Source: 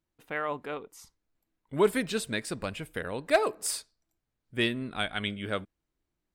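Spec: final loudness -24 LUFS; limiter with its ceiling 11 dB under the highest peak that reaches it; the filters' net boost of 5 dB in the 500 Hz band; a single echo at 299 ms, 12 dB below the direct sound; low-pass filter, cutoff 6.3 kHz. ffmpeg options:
-af "lowpass=6300,equalizer=f=500:t=o:g=6.5,alimiter=limit=0.106:level=0:latency=1,aecho=1:1:299:0.251,volume=2.66"

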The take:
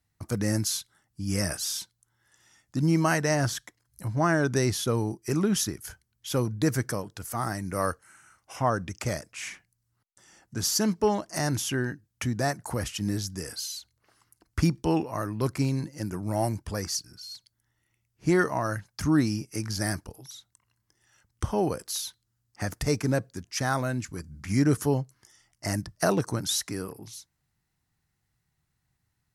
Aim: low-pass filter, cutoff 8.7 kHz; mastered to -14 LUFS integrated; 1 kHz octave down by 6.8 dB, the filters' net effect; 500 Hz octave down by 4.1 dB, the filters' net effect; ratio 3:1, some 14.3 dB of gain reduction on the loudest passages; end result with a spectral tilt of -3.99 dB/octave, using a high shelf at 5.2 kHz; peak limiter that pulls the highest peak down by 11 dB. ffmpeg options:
-af "lowpass=8700,equalizer=f=500:t=o:g=-3.5,equalizer=f=1000:t=o:g=-8.5,highshelf=f=5200:g=8,acompressor=threshold=0.0112:ratio=3,volume=23.7,alimiter=limit=0.708:level=0:latency=1"

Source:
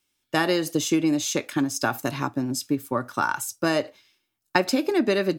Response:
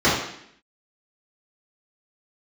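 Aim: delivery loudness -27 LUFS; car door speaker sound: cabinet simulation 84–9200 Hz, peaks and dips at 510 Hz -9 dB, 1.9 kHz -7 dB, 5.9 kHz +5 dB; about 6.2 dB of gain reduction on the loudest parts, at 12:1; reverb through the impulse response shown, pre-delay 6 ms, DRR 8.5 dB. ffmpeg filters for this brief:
-filter_complex "[0:a]acompressor=threshold=0.0794:ratio=12,asplit=2[s0][s1];[1:a]atrim=start_sample=2205,adelay=6[s2];[s1][s2]afir=irnorm=-1:irlink=0,volume=0.0316[s3];[s0][s3]amix=inputs=2:normalize=0,highpass=84,equalizer=f=510:t=q:w=4:g=-9,equalizer=f=1900:t=q:w=4:g=-7,equalizer=f=5900:t=q:w=4:g=5,lowpass=f=9200:w=0.5412,lowpass=f=9200:w=1.3066,volume=1.19"

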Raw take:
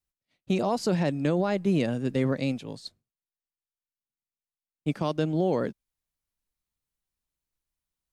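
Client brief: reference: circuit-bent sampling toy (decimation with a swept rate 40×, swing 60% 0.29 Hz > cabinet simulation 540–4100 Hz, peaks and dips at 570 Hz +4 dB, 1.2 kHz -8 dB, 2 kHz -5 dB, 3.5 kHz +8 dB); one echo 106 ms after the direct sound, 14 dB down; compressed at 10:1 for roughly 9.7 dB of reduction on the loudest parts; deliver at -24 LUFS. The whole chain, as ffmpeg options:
-af "acompressor=threshold=0.0316:ratio=10,aecho=1:1:106:0.2,acrusher=samples=40:mix=1:aa=0.000001:lfo=1:lforange=24:lforate=0.29,highpass=540,equalizer=f=570:t=q:w=4:g=4,equalizer=f=1200:t=q:w=4:g=-8,equalizer=f=2000:t=q:w=4:g=-5,equalizer=f=3500:t=q:w=4:g=8,lowpass=f=4100:w=0.5412,lowpass=f=4100:w=1.3066,volume=7.08"

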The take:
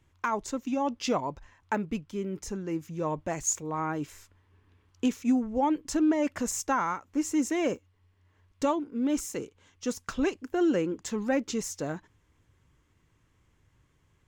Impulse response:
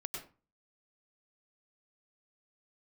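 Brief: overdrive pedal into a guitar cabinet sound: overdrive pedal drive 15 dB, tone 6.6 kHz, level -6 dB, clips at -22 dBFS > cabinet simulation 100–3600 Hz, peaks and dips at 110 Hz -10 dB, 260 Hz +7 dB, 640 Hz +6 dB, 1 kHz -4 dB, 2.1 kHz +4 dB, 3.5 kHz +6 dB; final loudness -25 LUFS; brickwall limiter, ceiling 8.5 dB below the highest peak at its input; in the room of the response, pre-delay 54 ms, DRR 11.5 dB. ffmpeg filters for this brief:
-filter_complex "[0:a]alimiter=level_in=1.12:limit=0.0631:level=0:latency=1,volume=0.891,asplit=2[s0][s1];[1:a]atrim=start_sample=2205,adelay=54[s2];[s1][s2]afir=irnorm=-1:irlink=0,volume=0.282[s3];[s0][s3]amix=inputs=2:normalize=0,asplit=2[s4][s5];[s5]highpass=f=720:p=1,volume=5.62,asoftclip=type=tanh:threshold=0.0794[s6];[s4][s6]amix=inputs=2:normalize=0,lowpass=f=6600:p=1,volume=0.501,highpass=100,equalizer=f=110:t=q:w=4:g=-10,equalizer=f=260:t=q:w=4:g=7,equalizer=f=640:t=q:w=4:g=6,equalizer=f=1000:t=q:w=4:g=-4,equalizer=f=2100:t=q:w=4:g=4,equalizer=f=3500:t=q:w=4:g=6,lowpass=f=3600:w=0.5412,lowpass=f=3600:w=1.3066,volume=1.88"

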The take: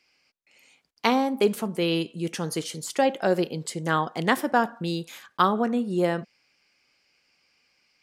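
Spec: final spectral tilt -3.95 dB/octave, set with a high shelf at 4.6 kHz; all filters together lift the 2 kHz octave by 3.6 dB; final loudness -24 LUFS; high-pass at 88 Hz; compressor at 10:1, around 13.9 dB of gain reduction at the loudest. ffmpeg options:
-af "highpass=88,equalizer=f=2000:t=o:g=4,highshelf=f=4600:g=3.5,acompressor=threshold=0.0355:ratio=10,volume=3.35"

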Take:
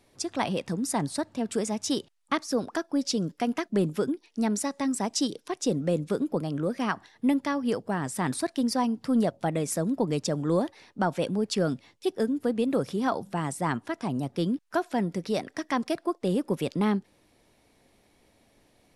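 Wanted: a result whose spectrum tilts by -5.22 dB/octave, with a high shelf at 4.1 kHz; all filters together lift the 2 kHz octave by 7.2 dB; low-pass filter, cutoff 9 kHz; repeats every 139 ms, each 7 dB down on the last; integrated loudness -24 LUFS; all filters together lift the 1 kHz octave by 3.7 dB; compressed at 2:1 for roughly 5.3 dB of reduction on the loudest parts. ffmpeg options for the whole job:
-af "lowpass=9000,equalizer=f=1000:t=o:g=3,equalizer=f=2000:t=o:g=9,highshelf=f=4100:g=-5,acompressor=threshold=0.0398:ratio=2,aecho=1:1:139|278|417|556|695:0.447|0.201|0.0905|0.0407|0.0183,volume=2.11"

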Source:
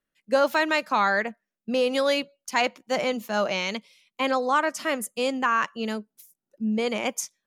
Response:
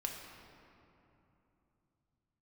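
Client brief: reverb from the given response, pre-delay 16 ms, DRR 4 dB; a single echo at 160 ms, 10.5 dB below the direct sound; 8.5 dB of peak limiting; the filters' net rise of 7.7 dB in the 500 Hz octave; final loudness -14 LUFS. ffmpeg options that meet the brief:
-filter_complex "[0:a]equalizer=f=500:t=o:g=8.5,alimiter=limit=0.224:level=0:latency=1,aecho=1:1:160:0.299,asplit=2[s0][s1];[1:a]atrim=start_sample=2205,adelay=16[s2];[s1][s2]afir=irnorm=-1:irlink=0,volume=0.596[s3];[s0][s3]amix=inputs=2:normalize=0,volume=2.51"

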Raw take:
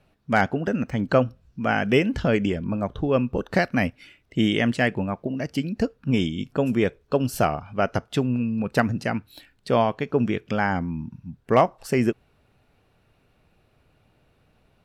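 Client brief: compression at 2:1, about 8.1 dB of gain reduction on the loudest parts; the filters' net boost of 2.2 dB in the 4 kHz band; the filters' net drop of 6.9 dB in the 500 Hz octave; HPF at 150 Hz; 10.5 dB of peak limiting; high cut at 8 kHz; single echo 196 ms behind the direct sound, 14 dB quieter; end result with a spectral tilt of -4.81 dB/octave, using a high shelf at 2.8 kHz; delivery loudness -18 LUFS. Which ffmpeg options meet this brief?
-af "highpass=150,lowpass=8000,equalizer=f=500:t=o:g=-9,highshelf=f=2800:g=-3.5,equalizer=f=4000:t=o:g=6.5,acompressor=threshold=0.0224:ratio=2,alimiter=level_in=1.12:limit=0.0631:level=0:latency=1,volume=0.891,aecho=1:1:196:0.2,volume=8.91"

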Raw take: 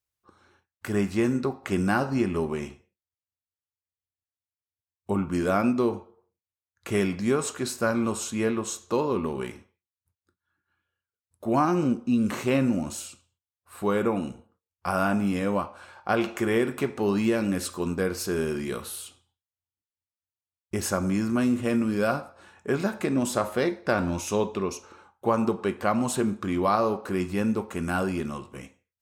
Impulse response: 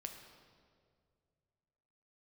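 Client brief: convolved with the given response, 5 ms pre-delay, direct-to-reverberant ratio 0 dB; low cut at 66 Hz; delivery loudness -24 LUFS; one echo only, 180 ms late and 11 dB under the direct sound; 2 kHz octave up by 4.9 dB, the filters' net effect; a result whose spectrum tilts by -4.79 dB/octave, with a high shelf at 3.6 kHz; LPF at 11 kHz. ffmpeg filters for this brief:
-filter_complex "[0:a]highpass=66,lowpass=11000,equalizer=f=2000:t=o:g=5,highshelf=f=3600:g=6.5,aecho=1:1:180:0.282,asplit=2[s0][s1];[1:a]atrim=start_sample=2205,adelay=5[s2];[s1][s2]afir=irnorm=-1:irlink=0,volume=1.5[s3];[s0][s3]amix=inputs=2:normalize=0,volume=0.794"

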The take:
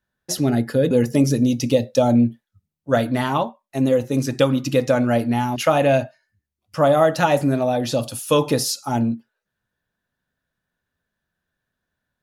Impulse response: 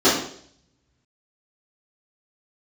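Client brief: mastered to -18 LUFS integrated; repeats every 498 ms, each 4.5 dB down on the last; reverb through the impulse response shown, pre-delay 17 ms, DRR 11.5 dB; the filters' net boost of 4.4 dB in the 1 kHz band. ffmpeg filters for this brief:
-filter_complex "[0:a]equalizer=f=1000:t=o:g=6,aecho=1:1:498|996|1494|1992|2490|2988|3486|3984|4482:0.596|0.357|0.214|0.129|0.0772|0.0463|0.0278|0.0167|0.01,asplit=2[s0][s1];[1:a]atrim=start_sample=2205,adelay=17[s2];[s1][s2]afir=irnorm=-1:irlink=0,volume=0.02[s3];[s0][s3]amix=inputs=2:normalize=0,volume=0.841"

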